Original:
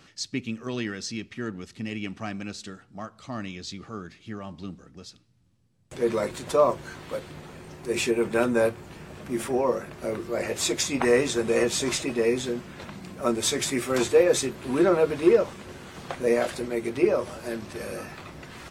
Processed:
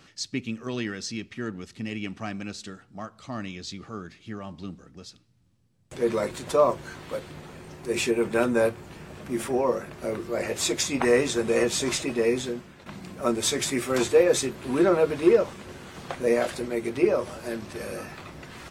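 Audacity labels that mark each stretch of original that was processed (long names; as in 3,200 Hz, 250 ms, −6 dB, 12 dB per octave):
12.380000	12.860000	fade out linear, to −12 dB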